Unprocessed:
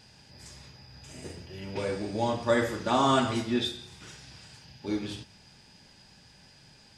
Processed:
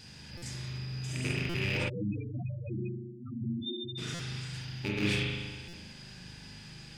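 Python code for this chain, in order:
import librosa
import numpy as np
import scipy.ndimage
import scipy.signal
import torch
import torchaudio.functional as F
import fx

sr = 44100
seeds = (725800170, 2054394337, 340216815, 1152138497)

y = fx.rattle_buzz(x, sr, strikes_db=-41.0, level_db=-27.0)
y = fx.over_compress(y, sr, threshold_db=-33.0, ratio=-0.5)
y = fx.peak_eq(y, sr, hz=720.0, db=-9.0, octaves=1.6)
y = fx.echo_feedback(y, sr, ms=299, feedback_pct=46, wet_db=-24.0)
y = fx.rev_spring(y, sr, rt60_s=1.4, pass_ms=(39,), chirp_ms=45, drr_db=-3.5)
y = fx.spec_topn(y, sr, count=4, at=(1.88, 3.97), fade=0.02)
y = fx.buffer_glitch(y, sr, at_s=(0.37, 1.49, 4.14, 5.68), block=256, repeats=8)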